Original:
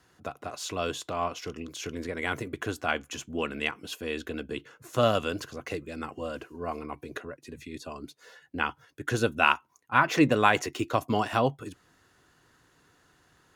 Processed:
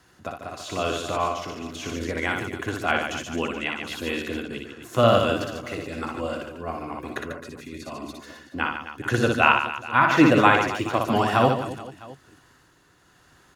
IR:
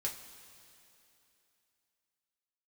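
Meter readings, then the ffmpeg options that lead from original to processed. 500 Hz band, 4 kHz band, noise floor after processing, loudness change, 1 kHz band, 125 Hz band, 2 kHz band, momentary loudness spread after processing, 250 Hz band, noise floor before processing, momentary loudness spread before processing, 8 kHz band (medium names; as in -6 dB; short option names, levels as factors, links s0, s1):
+5.5 dB, +4.5 dB, -58 dBFS, +5.5 dB, +6.0 dB, +6.0 dB, +5.5 dB, 18 LU, +6.5 dB, -65 dBFS, 17 LU, +1.5 dB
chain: -filter_complex "[0:a]asplit=2[s0][s1];[s1]aecho=0:1:60|144|261.6|426.2|656.7:0.631|0.398|0.251|0.158|0.1[s2];[s0][s2]amix=inputs=2:normalize=0,acrossover=split=3600[s3][s4];[s4]acompressor=threshold=0.00794:ratio=4:attack=1:release=60[s5];[s3][s5]amix=inputs=2:normalize=0,tremolo=f=0.97:d=0.35,bandreject=f=450:w=12,volume=1.78"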